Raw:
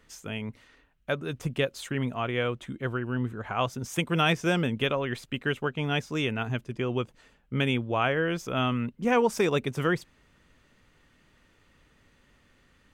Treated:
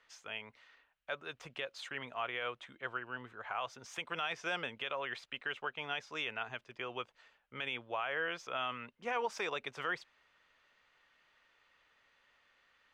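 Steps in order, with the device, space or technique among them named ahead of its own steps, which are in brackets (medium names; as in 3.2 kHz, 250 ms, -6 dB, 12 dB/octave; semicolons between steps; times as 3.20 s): DJ mixer with the lows and highs turned down (three-band isolator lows -22 dB, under 570 Hz, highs -20 dB, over 5.6 kHz; peak limiter -22.5 dBFS, peak gain reduction 10.5 dB); trim -3.5 dB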